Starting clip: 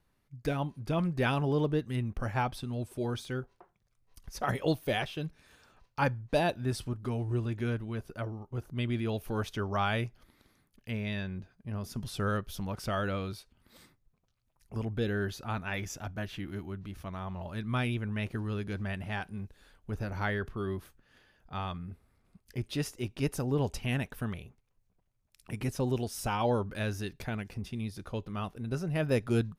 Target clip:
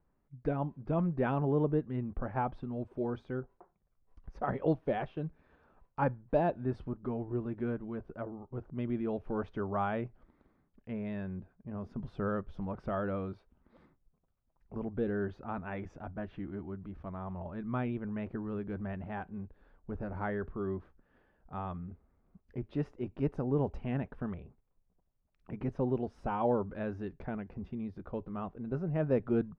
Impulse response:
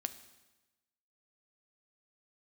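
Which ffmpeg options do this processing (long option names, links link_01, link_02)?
-af "lowpass=1100,equalizer=frequency=110:width=6.1:gain=-14.5"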